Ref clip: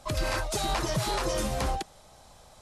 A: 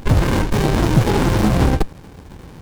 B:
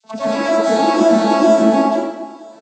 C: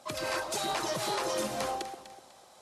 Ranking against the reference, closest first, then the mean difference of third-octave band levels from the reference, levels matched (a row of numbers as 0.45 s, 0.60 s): C, A, B; 3.5 dB, 7.5 dB, 13.0 dB